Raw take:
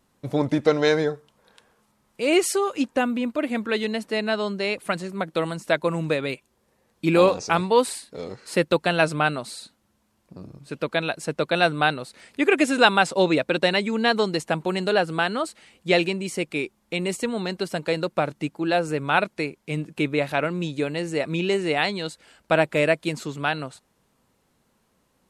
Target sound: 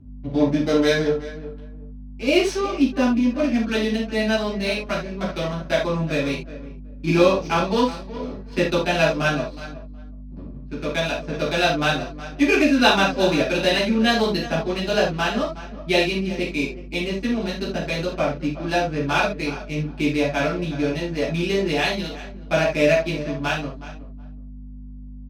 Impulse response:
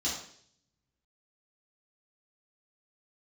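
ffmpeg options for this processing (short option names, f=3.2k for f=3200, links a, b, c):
-filter_complex "[0:a]asplit=2[a][b];[b]adelay=368,lowpass=f=4.8k:p=1,volume=-14.5dB,asplit=2[c][d];[d]adelay=368,lowpass=f=4.8k:p=1,volume=0.22[e];[a][c][e]amix=inputs=3:normalize=0,adynamicsmooth=sensitivity=6:basefreq=720,aeval=exprs='val(0)+0.0112*(sin(2*PI*50*n/s)+sin(2*PI*2*50*n/s)/2+sin(2*PI*3*50*n/s)/3+sin(2*PI*4*50*n/s)/4+sin(2*PI*5*50*n/s)/5)':c=same[f];[1:a]atrim=start_sample=2205,atrim=end_sample=3528,asetrate=37926,aresample=44100[g];[f][g]afir=irnorm=-1:irlink=0,volume=-6dB"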